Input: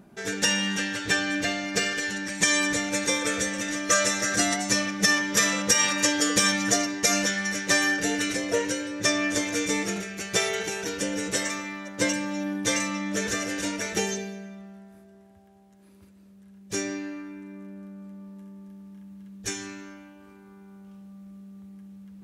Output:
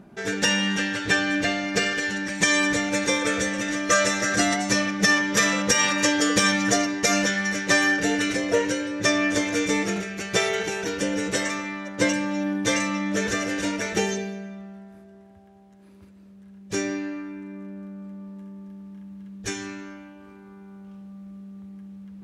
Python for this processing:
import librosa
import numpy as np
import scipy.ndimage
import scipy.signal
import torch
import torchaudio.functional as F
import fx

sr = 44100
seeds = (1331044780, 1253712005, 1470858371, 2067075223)

y = fx.lowpass(x, sr, hz=3800.0, slope=6)
y = y * 10.0 ** (4.0 / 20.0)